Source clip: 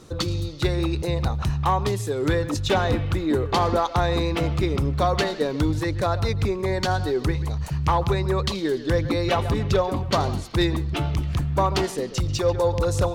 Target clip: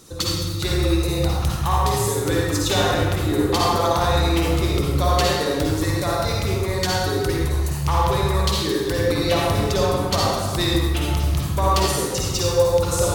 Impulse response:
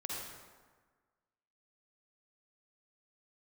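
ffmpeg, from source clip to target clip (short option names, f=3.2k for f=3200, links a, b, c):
-filter_complex "[0:a]aemphasis=mode=production:type=75kf[a];[1:a]atrim=start_sample=2205[b];[a][b]afir=irnorm=-1:irlink=0"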